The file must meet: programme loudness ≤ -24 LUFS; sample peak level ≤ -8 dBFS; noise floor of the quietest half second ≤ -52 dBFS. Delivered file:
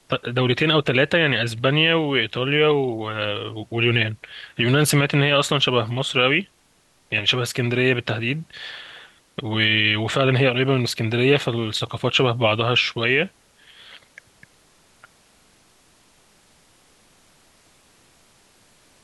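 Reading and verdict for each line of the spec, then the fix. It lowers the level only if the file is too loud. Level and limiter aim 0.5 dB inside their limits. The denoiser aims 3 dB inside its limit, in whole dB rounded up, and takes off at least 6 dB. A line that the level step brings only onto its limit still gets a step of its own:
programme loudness -20.0 LUFS: fail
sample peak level -5.5 dBFS: fail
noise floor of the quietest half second -60 dBFS: OK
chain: gain -4.5 dB

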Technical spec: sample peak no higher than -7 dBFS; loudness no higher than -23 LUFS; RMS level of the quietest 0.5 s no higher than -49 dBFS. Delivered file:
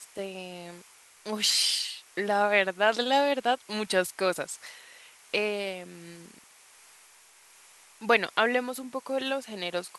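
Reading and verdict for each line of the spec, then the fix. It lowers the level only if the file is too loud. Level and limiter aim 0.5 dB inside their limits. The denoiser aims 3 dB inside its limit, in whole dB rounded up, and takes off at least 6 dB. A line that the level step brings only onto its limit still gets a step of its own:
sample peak -8.0 dBFS: OK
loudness -27.5 LUFS: OK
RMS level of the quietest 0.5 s -57 dBFS: OK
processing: none

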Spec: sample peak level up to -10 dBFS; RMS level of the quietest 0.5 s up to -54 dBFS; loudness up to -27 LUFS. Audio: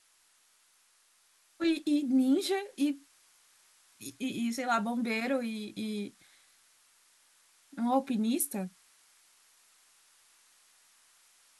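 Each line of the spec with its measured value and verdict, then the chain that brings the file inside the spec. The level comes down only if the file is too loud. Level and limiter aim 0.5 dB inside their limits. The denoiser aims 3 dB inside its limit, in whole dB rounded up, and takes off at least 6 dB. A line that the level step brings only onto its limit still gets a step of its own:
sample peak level -16.5 dBFS: OK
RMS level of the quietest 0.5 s -67 dBFS: OK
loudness -31.5 LUFS: OK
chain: none

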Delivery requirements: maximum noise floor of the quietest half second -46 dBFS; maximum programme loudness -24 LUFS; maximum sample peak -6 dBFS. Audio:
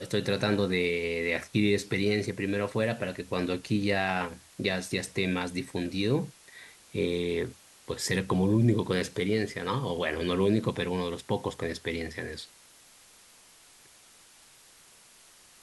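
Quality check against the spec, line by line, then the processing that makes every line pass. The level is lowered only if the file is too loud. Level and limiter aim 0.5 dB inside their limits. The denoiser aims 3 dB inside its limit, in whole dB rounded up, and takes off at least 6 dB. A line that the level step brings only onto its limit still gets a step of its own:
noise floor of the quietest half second -56 dBFS: OK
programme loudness -29.5 LUFS: OK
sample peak -11.5 dBFS: OK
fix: none

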